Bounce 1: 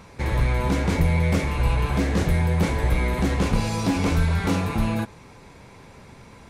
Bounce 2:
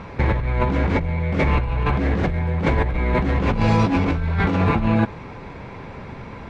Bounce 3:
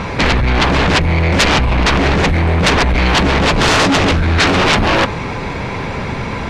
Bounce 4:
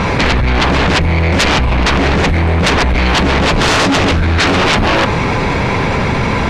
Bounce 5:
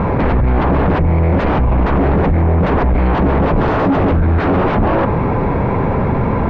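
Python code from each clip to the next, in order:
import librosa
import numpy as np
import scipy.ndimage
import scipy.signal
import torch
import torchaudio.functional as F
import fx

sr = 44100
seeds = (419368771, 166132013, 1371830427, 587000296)

y1 = scipy.signal.sosfilt(scipy.signal.butter(2, 2600.0, 'lowpass', fs=sr, output='sos'), x)
y1 = fx.over_compress(y1, sr, threshold_db=-26.0, ratio=-1.0)
y1 = y1 * 10.0 ** (6.5 / 20.0)
y2 = fx.fold_sine(y1, sr, drive_db=14, ceiling_db=-6.0)
y2 = fx.high_shelf(y2, sr, hz=2900.0, db=10.0)
y2 = y2 * 10.0 ** (-4.0 / 20.0)
y3 = fx.env_flatten(y2, sr, amount_pct=70)
y3 = y3 * 10.0 ** (-1.0 / 20.0)
y4 = scipy.signal.sosfilt(scipy.signal.butter(2, 1000.0, 'lowpass', fs=sr, output='sos'), y3)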